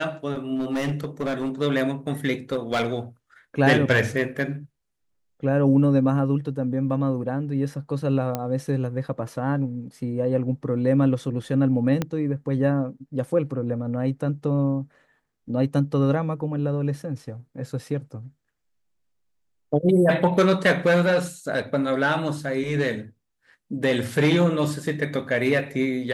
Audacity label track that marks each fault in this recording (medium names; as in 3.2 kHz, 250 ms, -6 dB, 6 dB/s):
0.550000	1.600000	clipped -21.5 dBFS
2.520000	2.860000	clipped -18.5 dBFS
8.350000	8.350000	pop -12 dBFS
12.020000	12.020000	pop -11 dBFS